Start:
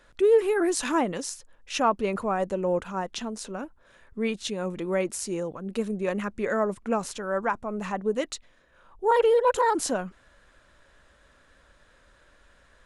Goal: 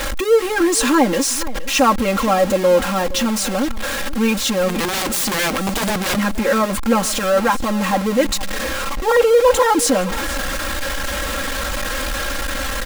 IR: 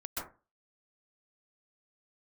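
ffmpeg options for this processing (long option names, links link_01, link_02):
-filter_complex "[0:a]aeval=exprs='val(0)+0.5*0.0596*sgn(val(0))':channel_layout=same,aecho=1:1:3.7:0.98,asplit=3[link_01][link_02][link_03];[link_01]afade=type=out:start_time=4.68:duration=0.02[link_04];[link_02]aeval=exprs='(mod(9.44*val(0)+1,2)-1)/9.44':channel_layout=same,afade=type=in:start_time=4.68:duration=0.02,afade=type=out:start_time=6.15:duration=0.02[link_05];[link_03]afade=type=in:start_time=6.15:duration=0.02[link_06];[link_04][link_05][link_06]amix=inputs=3:normalize=0,asplit=2[link_07][link_08];[link_08]aecho=0:1:471:0.15[link_09];[link_07][link_09]amix=inputs=2:normalize=0,volume=4dB"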